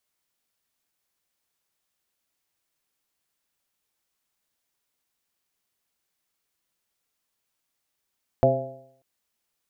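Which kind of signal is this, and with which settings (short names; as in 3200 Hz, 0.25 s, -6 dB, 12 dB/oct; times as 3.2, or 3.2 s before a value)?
stretched partials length 0.59 s, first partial 129 Hz, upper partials -4/-4.5/3/5/-11 dB, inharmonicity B 0.0035, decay 0.66 s, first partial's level -20.5 dB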